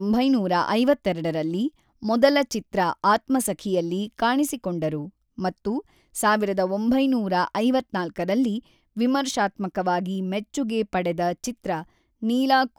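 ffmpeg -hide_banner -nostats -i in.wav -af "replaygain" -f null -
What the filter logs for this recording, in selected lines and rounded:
track_gain = +3.8 dB
track_peak = 0.482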